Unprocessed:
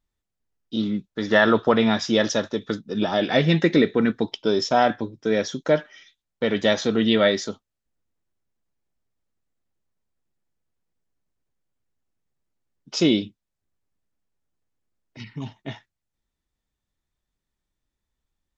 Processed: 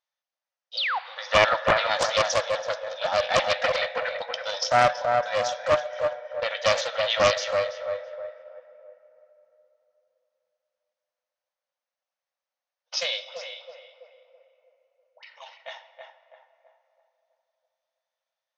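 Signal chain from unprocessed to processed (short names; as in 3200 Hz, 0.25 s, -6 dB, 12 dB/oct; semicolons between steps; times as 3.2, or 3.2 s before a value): brick-wall FIR band-pass 490–6600 Hz; tape echo 0.328 s, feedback 50%, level -3 dB, low-pass 1300 Hz; 0.77–0.99 painted sound fall 680–5100 Hz -26 dBFS; 13.23–15.23 dispersion highs, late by 0.111 s, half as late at 1800 Hz; on a send at -12.5 dB: reverb RT60 3.5 s, pre-delay 5 ms; on the sum: Doppler distortion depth 0.36 ms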